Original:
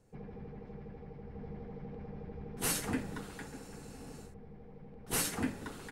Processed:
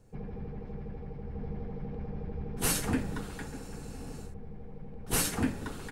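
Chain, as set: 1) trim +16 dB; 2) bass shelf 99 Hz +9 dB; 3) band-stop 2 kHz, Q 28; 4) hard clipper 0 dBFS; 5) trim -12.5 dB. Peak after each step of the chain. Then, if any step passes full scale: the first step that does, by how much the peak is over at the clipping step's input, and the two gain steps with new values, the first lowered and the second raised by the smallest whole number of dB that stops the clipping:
-3.0 dBFS, -2.0 dBFS, -2.0 dBFS, -2.0 dBFS, -14.5 dBFS; nothing clips

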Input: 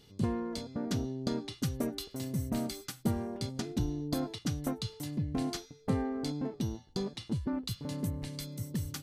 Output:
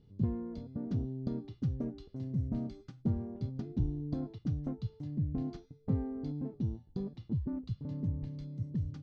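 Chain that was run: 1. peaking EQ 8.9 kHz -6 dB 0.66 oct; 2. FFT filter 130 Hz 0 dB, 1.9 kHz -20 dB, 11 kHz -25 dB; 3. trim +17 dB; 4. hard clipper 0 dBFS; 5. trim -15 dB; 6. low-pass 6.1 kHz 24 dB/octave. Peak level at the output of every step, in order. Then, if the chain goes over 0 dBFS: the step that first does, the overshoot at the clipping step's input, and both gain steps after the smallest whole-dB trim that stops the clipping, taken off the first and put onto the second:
-18.0 dBFS, -20.5 dBFS, -3.5 dBFS, -3.5 dBFS, -18.5 dBFS, -18.5 dBFS; nothing clips

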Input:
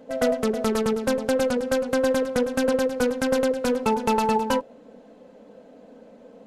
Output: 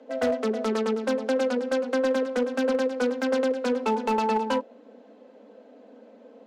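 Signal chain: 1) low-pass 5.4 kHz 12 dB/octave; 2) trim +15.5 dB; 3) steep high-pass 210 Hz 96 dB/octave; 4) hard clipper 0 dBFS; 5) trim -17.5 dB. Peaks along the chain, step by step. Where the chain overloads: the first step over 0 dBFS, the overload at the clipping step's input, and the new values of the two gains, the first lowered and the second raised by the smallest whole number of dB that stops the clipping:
-10.5 dBFS, +5.0 dBFS, +5.0 dBFS, 0.0 dBFS, -17.5 dBFS; step 2, 5.0 dB; step 2 +10.5 dB, step 5 -12.5 dB

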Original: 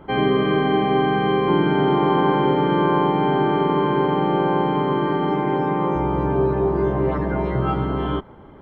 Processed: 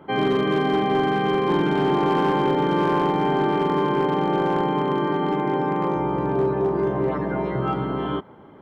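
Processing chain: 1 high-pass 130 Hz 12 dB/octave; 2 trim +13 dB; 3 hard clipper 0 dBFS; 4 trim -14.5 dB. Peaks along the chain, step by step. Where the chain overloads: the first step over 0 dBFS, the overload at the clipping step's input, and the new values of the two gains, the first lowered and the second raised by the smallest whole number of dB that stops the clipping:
-6.5 dBFS, +6.5 dBFS, 0.0 dBFS, -14.5 dBFS; step 2, 6.5 dB; step 2 +6 dB, step 4 -7.5 dB

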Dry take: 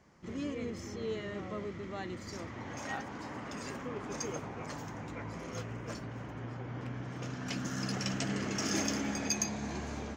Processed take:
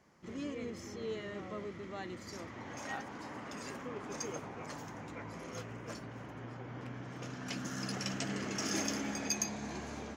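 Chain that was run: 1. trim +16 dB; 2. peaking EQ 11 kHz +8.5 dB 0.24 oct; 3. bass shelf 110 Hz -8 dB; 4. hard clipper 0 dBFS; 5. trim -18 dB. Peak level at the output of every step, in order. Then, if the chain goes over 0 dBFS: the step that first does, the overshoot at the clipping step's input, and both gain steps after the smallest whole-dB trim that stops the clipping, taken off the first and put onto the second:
-1.5 dBFS, -1.5 dBFS, -1.5 dBFS, -1.5 dBFS, -19.5 dBFS; nothing clips

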